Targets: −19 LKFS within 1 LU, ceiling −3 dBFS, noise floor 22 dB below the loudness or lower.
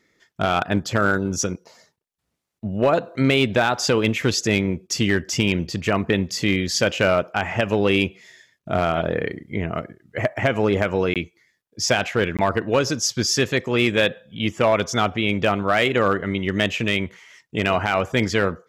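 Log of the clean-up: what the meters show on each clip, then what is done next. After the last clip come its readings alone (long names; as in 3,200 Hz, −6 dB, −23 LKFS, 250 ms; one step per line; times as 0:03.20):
share of clipped samples 0.5%; peaks flattened at −9.5 dBFS; number of dropouts 2; longest dropout 17 ms; integrated loudness −21.5 LKFS; sample peak −9.5 dBFS; target loudness −19.0 LKFS
→ clipped peaks rebuilt −9.5 dBFS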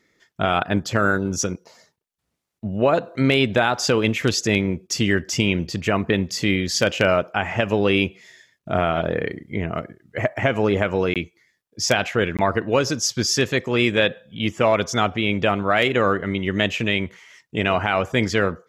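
share of clipped samples 0.0%; number of dropouts 2; longest dropout 17 ms
→ repair the gap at 0:11.14/0:12.37, 17 ms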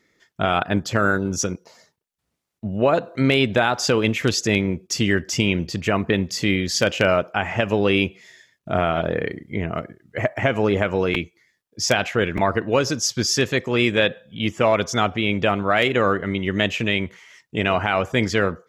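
number of dropouts 0; integrated loudness −21.5 LKFS; sample peak −1.5 dBFS; target loudness −19.0 LKFS
→ level +2.5 dB
brickwall limiter −3 dBFS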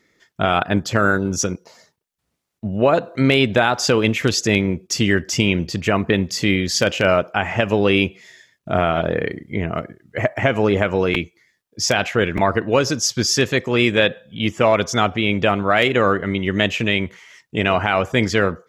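integrated loudness −19.0 LKFS; sample peak −3.0 dBFS; background noise floor −75 dBFS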